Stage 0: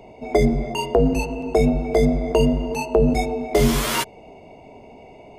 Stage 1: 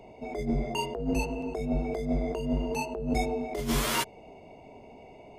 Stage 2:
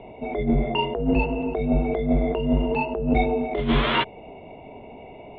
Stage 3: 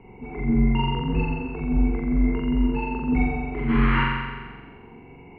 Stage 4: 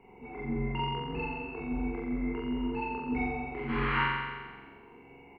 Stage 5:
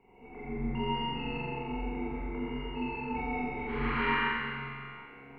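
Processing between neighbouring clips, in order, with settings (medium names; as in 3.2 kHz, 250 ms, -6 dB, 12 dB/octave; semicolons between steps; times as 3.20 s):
compressor with a negative ratio -19 dBFS, ratio -0.5; trim -8 dB
steep low-pass 3.7 kHz 72 dB/octave; trim +7.5 dB
static phaser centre 1.5 kHz, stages 4; on a send: flutter echo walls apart 7.5 m, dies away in 1.4 s; on the sum: trim -1.5 dB
tone controls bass -9 dB, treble +6 dB; doubling 29 ms -3.5 dB; trim -6.5 dB
reverberation RT60 2.4 s, pre-delay 45 ms, DRR -6 dB; trim -6.5 dB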